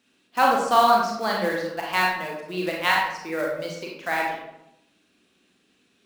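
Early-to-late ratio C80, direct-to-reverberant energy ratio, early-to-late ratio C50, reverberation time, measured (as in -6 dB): 5.0 dB, -2.0 dB, 2.0 dB, 0.85 s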